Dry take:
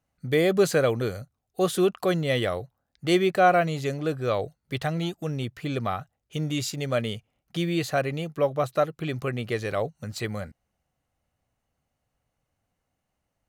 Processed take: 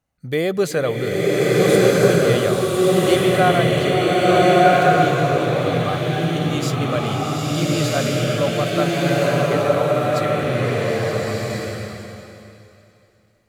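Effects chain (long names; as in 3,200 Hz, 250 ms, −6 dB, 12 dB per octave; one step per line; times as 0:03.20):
slow-attack reverb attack 1,390 ms, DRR −7.5 dB
level +1 dB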